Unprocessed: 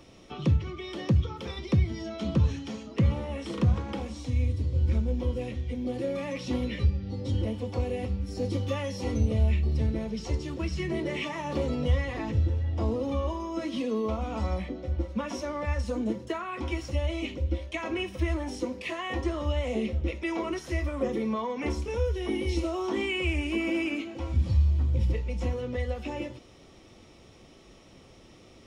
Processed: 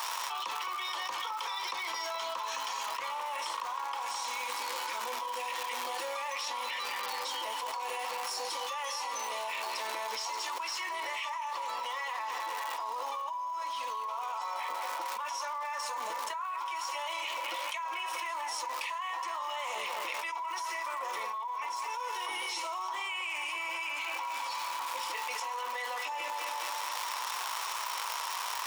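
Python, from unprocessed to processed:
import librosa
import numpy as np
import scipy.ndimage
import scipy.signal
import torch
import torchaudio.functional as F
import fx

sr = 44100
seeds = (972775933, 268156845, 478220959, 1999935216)

y = fx.high_shelf(x, sr, hz=4000.0, db=11.0)
y = fx.dmg_crackle(y, sr, seeds[0], per_s=390.0, level_db=-36.0)
y = fx.ladder_highpass(y, sr, hz=930.0, resonance_pct=80)
y = fx.echo_bbd(y, sr, ms=211, stages=4096, feedback_pct=54, wet_db=-10.0)
y = fx.env_flatten(y, sr, amount_pct=100)
y = F.gain(torch.from_numpy(y), -8.0).numpy()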